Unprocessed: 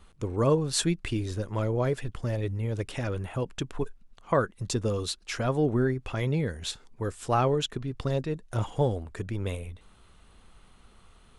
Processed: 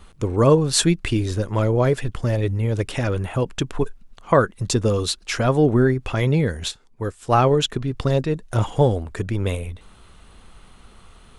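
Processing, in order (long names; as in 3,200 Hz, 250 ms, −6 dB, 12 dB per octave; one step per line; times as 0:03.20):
0:06.68–0:07.51: expander for the loud parts 1.5 to 1, over −44 dBFS
level +8.5 dB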